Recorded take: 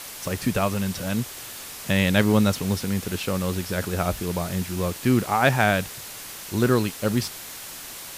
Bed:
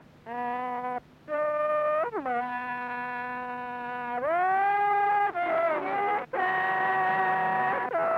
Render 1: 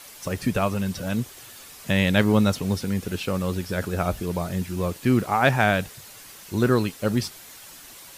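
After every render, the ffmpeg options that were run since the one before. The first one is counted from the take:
-af "afftdn=nr=8:nf=-38"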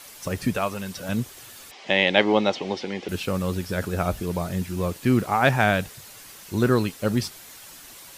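-filter_complex "[0:a]asettb=1/sr,asplit=3[a][b][c];[a]atrim=end=0.554[d];[b]atrim=start=0.55:end=1.09,asetpts=PTS-STARTPTS,afade=t=in:d=0.004:c=qsin,afade=t=out:st=0.536:d=0.004:c=qsin,lowshelf=f=250:g=-11.5[e];[c]atrim=start=1.086[f];[d][e]acrossfade=d=0.004:c1=hsin:c2=qsin[g];[g][f]acrossfade=d=0.004:c1=qsin:c2=hsin,asettb=1/sr,asplit=3[h][i][j];[h]atrim=end=1.714[k];[i]atrim=start=1.71:end=3.09,asetpts=PTS-STARTPTS,afade=t=in:d=0.004:c=qsin,afade=t=out:st=1.376:d=0.004:c=qsin,highpass=300,equalizer=f=350:t=q:w=4:g=7,equalizer=f=560:t=q:w=4:g=4,equalizer=f=800:t=q:w=4:g=10,equalizer=f=1.4k:t=q:w=4:g=-4,equalizer=f=2.1k:t=q:w=4:g=7,equalizer=f=3.1k:t=q:w=4:g=7,lowpass=f=5.5k:w=0.5412,lowpass=f=5.5k:w=1.3066[l];[j]atrim=start=3.086[m];[k][l]acrossfade=d=0.004:c1=hsin:c2=qsin[n];[n][m]acrossfade=d=0.004:c1=qsin:c2=hsin"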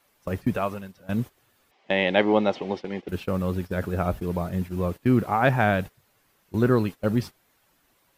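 -af "agate=range=-15dB:threshold=-30dB:ratio=16:detection=peak,equalizer=f=7.3k:w=0.39:g=-12"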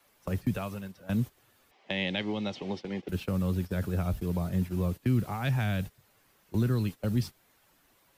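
-filter_complex "[0:a]acrossover=split=140|1800|4200[a][b][c][d];[b]alimiter=limit=-17dB:level=0:latency=1:release=207[e];[a][e][c][d]amix=inputs=4:normalize=0,acrossover=split=230|3000[f][g][h];[g]acompressor=threshold=-38dB:ratio=3[i];[f][i][h]amix=inputs=3:normalize=0"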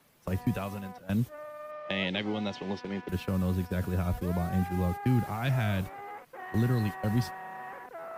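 -filter_complex "[1:a]volume=-15.5dB[a];[0:a][a]amix=inputs=2:normalize=0"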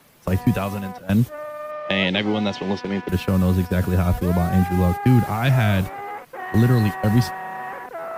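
-af "volume=10.5dB"

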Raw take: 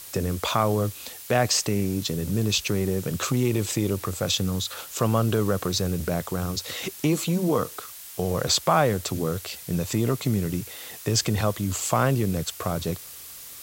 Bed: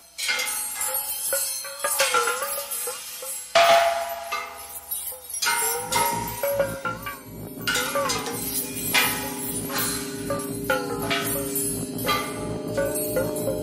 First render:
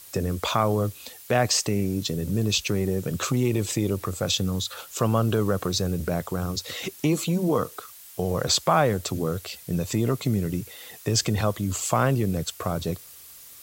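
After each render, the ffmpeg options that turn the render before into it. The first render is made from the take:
-af "afftdn=nr=6:nf=-42"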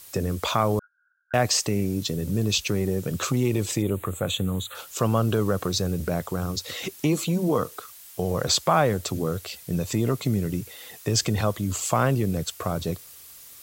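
-filter_complex "[0:a]asettb=1/sr,asplit=3[a][b][c];[a]atrim=end=0.794[d];[b]atrim=start=0.79:end=1.34,asetpts=PTS-STARTPTS,afade=t=in:d=0.004:c=qsin,afade=t=out:st=0.546:d=0.004:c=qsin,asuperpass=centerf=1500:order=12:qfactor=6.4[e];[c]atrim=start=1.336[f];[d][e]acrossfade=d=0.004:c1=hsin:c2=qsin[g];[g][f]acrossfade=d=0.004:c1=qsin:c2=hsin,asettb=1/sr,asplit=3[h][i][j];[h]atrim=end=3.824[k];[i]atrim=start=3.82:end=4.75,asetpts=PTS-STARTPTS,afade=t=in:d=0.004:c=qsin,afade=t=out:st=0.926:d=0.004:c=qsin,asuperstop=centerf=5200:order=4:qfactor=1.4[l];[j]atrim=start=4.746[m];[k][l]acrossfade=d=0.004:c1=hsin:c2=qsin[n];[n][m]acrossfade=d=0.004:c1=qsin:c2=hsin"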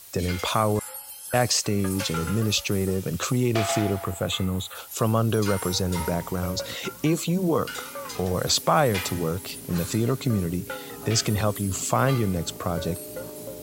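-filter_complex "[1:a]volume=-11.5dB[a];[0:a][a]amix=inputs=2:normalize=0"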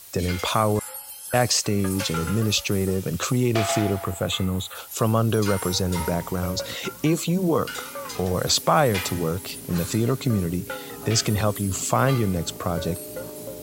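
-af "volume=1.5dB"

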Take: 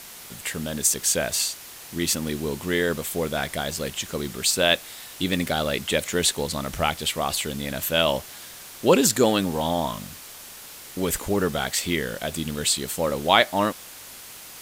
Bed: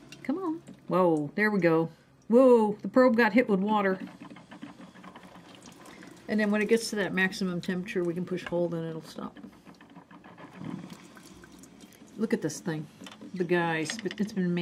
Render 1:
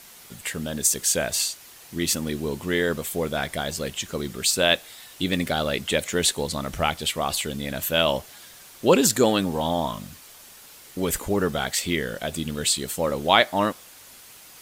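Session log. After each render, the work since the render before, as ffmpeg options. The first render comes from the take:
-af "afftdn=nr=6:nf=-42"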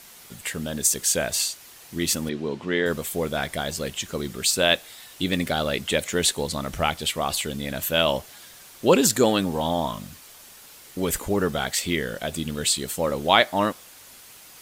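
-filter_complex "[0:a]asettb=1/sr,asplit=3[a][b][c];[a]atrim=end=2.294[d];[b]atrim=start=2.29:end=2.86,asetpts=PTS-STARTPTS,afade=t=in:d=0.004:c=qsin,afade=t=out:st=0.566:d=0.004:c=qsin,highpass=150,lowpass=4k[e];[c]atrim=start=2.856[f];[d][e]acrossfade=d=0.004:c1=hsin:c2=qsin[g];[g][f]acrossfade=d=0.004:c1=qsin:c2=hsin"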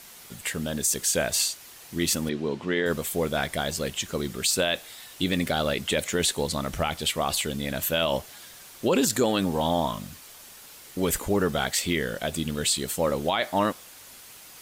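-af "alimiter=limit=-13.5dB:level=0:latency=1:release=27"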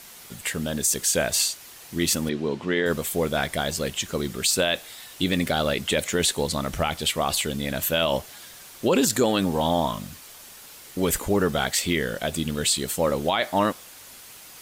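-af "volume=2dB"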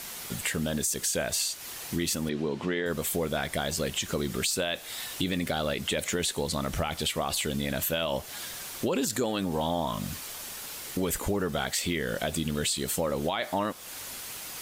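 -filter_complex "[0:a]acompressor=threshold=-31dB:ratio=4,asplit=2[a][b];[b]alimiter=level_in=3dB:limit=-24dB:level=0:latency=1:release=26,volume=-3dB,volume=-1.5dB[c];[a][c]amix=inputs=2:normalize=0"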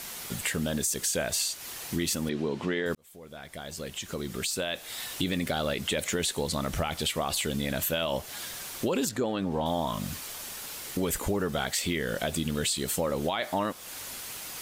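-filter_complex "[0:a]asettb=1/sr,asplit=3[a][b][c];[a]atrim=end=9.094[d];[b]atrim=start=9.09:end=9.66,asetpts=PTS-STARTPTS,afade=t=in:d=0.004:c=qsin,afade=t=out:st=0.566:d=0.004:c=qsin,aemphasis=mode=reproduction:type=75kf[e];[c]atrim=start=9.656[f];[d][e]acrossfade=d=0.004:c1=hsin:c2=qsin[g];[g][f]acrossfade=d=0.004:c1=qsin:c2=hsin,asplit=2[h][i];[h]atrim=end=2.95,asetpts=PTS-STARTPTS,afade=t=out:st=2.946:d=0.004:c=hsin[j];[i]atrim=start=2.95,asetpts=PTS-STARTPTS,afade=t=in:d=2.13[k];[j][k]concat=n=2:v=0:a=1"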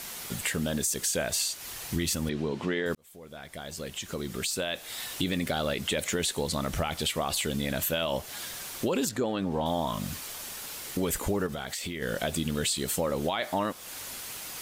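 -filter_complex "[0:a]asplit=3[a][b][c];[a]afade=t=out:st=1.64:d=0.02[d];[b]asubboost=boost=3:cutoff=150,afade=t=in:st=1.64:d=0.02,afade=t=out:st=2.51:d=0.02[e];[c]afade=t=in:st=2.51:d=0.02[f];[d][e][f]amix=inputs=3:normalize=0,asettb=1/sr,asplit=3[g][h][i];[g]atrim=end=11.464[j];[h]atrim=start=11.46:end=12.02,asetpts=PTS-STARTPTS,afade=t=in:d=0.004:c=qsin,afade=t=out:st=0.556:d=0.004:c=qsin,acompressor=threshold=-31dB:ratio=6:attack=3.2:release=140:knee=1:detection=peak[k];[i]atrim=start=12.016[l];[j][k]acrossfade=d=0.004:c1=hsin:c2=qsin[m];[m][l]acrossfade=d=0.004:c1=qsin:c2=hsin"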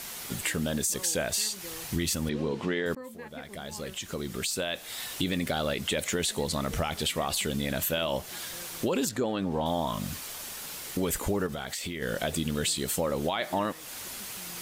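-filter_complex "[1:a]volume=-22.5dB[a];[0:a][a]amix=inputs=2:normalize=0"

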